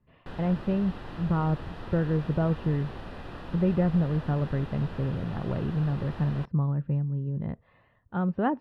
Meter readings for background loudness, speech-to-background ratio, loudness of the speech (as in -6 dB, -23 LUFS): -42.0 LUFS, 13.0 dB, -29.0 LUFS